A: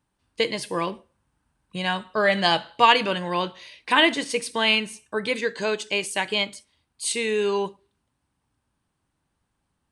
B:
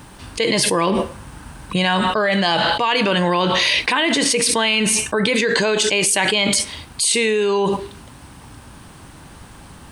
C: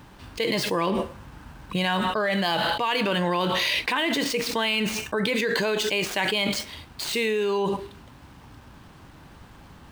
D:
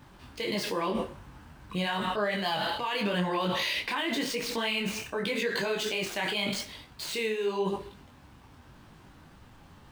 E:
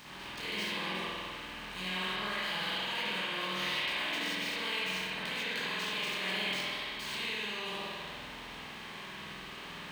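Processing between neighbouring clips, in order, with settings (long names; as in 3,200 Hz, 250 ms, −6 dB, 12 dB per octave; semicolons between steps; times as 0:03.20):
envelope flattener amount 100%; level −5 dB
running median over 5 samples; level −6.5 dB
on a send at −18 dB: convolution reverb RT60 0.50 s, pre-delay 50 ms; on the sum: micro pitch shift up and down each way 31 cents; level −2 dB
compressor on every frequency bin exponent 0.4; guitar amp tone stack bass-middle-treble 5-5-5; spring reverb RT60 1.8 s, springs 48 ms, chirp 25 ms, DRR −8.5 dB; level −7 dB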